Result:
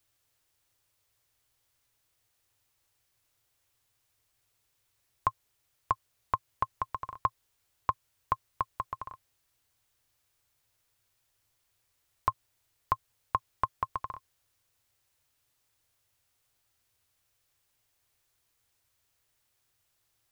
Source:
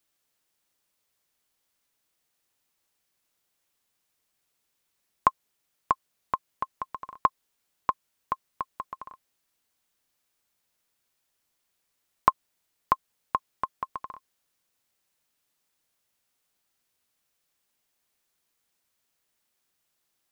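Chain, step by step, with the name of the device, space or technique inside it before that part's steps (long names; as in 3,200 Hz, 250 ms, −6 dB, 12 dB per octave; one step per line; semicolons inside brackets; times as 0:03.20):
car stereo with a boomy subwoofer (low shelf with overshoot 140 Hz +7 dB, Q 3; brickwall limiter −14 dBFS, peak gain reduction 10 dB)
level +1.5 dB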